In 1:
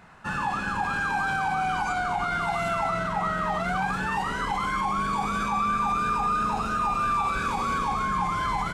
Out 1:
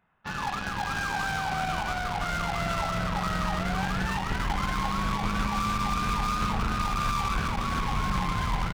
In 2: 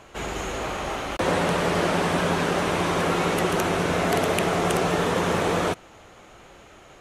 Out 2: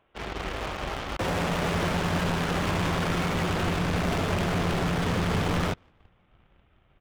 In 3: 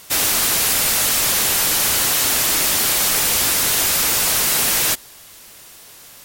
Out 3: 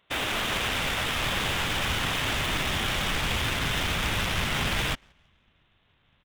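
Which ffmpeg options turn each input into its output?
ffmpeg -i in.wav -filter_complex "[0:a]asubboost=boost=4.5:cutoff=190,aresample=8000,aresample=44100,asoftclip=type=hard:threshold=-24dB,asplit=5[link_01][link_02][link_03][link_04][link_05];[link_02]adelay=172,afreqshift=-89,volume=-17dB[link_06];[link_03]adelay=344,afreqshift=-178,volume=-24.1dB[link_07];[link_04]adelay=516,afreqshift=-267,volume=-31.3dB[link_08];[link_05]adelay=688,afreqshift=-356,volume=-38.4dB[link_09];[link_01][link_06][link_07][link_08][link_09]amix=inputs=5:normalize=0,aeval=exprs='0.0944*(cos(1*acos(clip(val(0)/0.0944,-1,1)))-cos(1*PI/2))+0.0335*(cos(3*acos(clip(val(0)/0.0944,-1,1)))-cos(3*PI/2))+0.00237*(cos(5*acos(clip(val(0)/0.0944,-1,1)))-cos(5*PI/2))':channel_layout=same,volume=4.5dB" out.wav

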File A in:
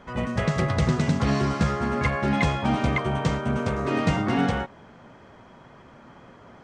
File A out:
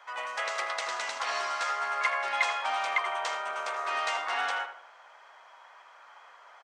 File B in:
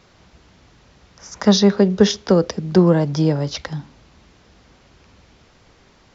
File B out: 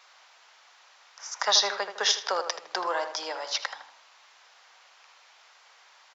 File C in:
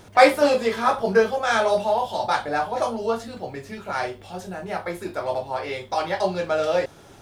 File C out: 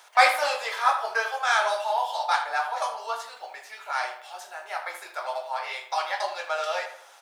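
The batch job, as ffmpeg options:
ffmpeg -i in.wav -filter_complex "[0:a]highpass=frequency=780:width=0.5412,highpass=frequency=780:width=1.3066,asplit=2[link_01][link_02];[link_02]adelay=79,lowpass=frequency=2600:poles=1,volume=-8.5dB,asplit=2[link_03][link_04];[link_04]adelay=79,lowpass=frequency=2600:poles=1,volume=0.44,asplit=2[link_05][link_06];[link_06]adelay=79,lowpass=frequency=2600:poles=1,volume=0.44,asplit=2[link_07][link_08];[link_08]adelay=79,lowpass=frequency=2600:poles=1,volume=0.44,asplit=2[link_09][link_10];[link_10]adelay=79,lowpass=frequency=2600:poles=1,volume=0.44[link_11];[link_03][link_05][link_07][link_09][link_11]amix=inputs=5:normalize=0[link_12];[link_01][link_12]amix=inputs=2:normalize=0" out.wav

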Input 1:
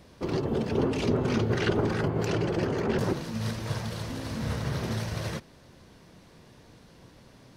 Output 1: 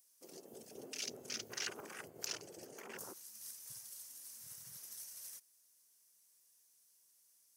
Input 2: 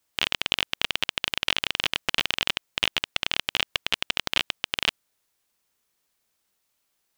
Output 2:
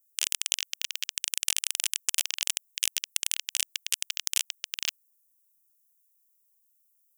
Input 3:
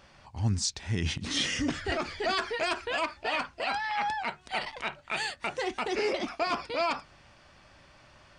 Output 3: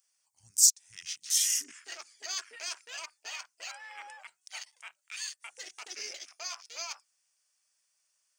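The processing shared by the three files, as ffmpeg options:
ffmpeg -i in.wav -af "aderivative,afwtdn=0.00447,aexciter=amount=8.2:drive=1.4:freq=5600" out.wav

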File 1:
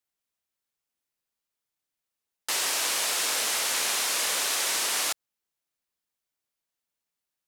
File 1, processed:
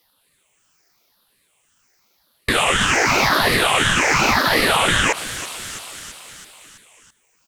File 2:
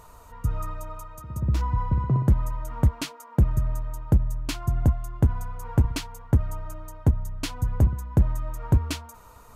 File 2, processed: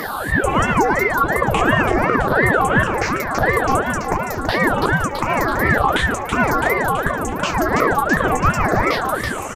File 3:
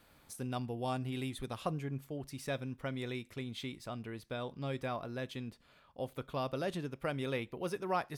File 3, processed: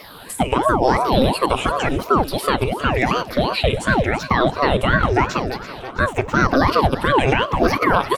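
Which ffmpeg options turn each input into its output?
ffmpeg -i in.wav -filter_complex "[0:a]afftfilt=real='re*pow(10,20/40*sin(2*PI*(0.6*log(max(b,1)*sr/1024/100)/log(2)-(-0.9)*(pts-256)/sr)))':imag='im*pow(10,20/40*sin(2*PI*(0.6*log(max(b,1)*sr/1024/100)/log(2)-(-0.9)*(pts-256)/sr)))':win_size=1024:overlap=0.75,afftfilt=real='re*lt(hypot(re,im),0.316)':imag='im*lt(hypot(re,im),0.316)':win_size=1024:overlap=0.75,equalizer=frequency=5900:width=0.8:gain=2.5,acompressor=threshold=-27dB:ratio=5,highpass=180,highshelf=frequency=3800:gain=-6,bandreject=frequency=50:width_type=h:width=6,bandreject=frequency=100:width_type=h:width=6,bandreject=frequency=150:width_type=h:width=6,bandreject=frequency=200:width_type=h:width=6,bandreject=frequency=250:width_type=h:width=6,aecho=1:1:330|660|990|1320|1650|1980:0.141|0.0833|0.0492|0.029|0.0171|0.0101,acrossover=split=2500[link_01][link_02];[link_02]acompressor=threshold=-49dB:ratio=4:attack=1:release=60[link_03];[link_01][link_03]amix=inputs=2:normalize=0,alimiter=level_in=27.5dB:limit=-1dB:release=50:level=0:latency=1,aeval=exprs='val(0)*sin(2*PI*500*n/s+500*0.75/2.8*sin(2*PI*2.8*n/s))':channel_layout=same,volume=-2.5dB" out.wav

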